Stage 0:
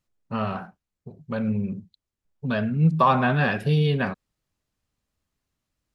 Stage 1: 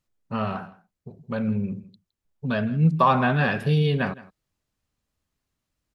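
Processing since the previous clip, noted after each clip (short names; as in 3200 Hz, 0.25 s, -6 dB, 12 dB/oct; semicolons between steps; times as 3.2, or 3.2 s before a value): echo 0.163 s -19.5 dB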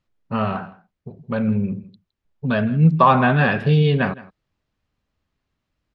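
LPF 3800 Hz 12 dB/oct; gain +5 dB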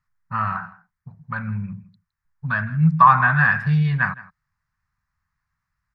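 EQ curve 160 Hz 0 dB, 370 Hz -28 dB, 590 Hz -16 dB, 1000 Hz +5 dB, 1800 Hz +8 dB, 3100 Hz -13 dB, 5200 Hz 0 dB; gain -2 dB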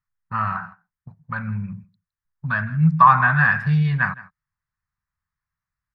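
gate -40 dBFS, range -9 dB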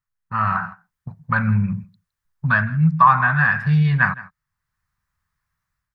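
AGC gain up to 10 dB; gain -1 dB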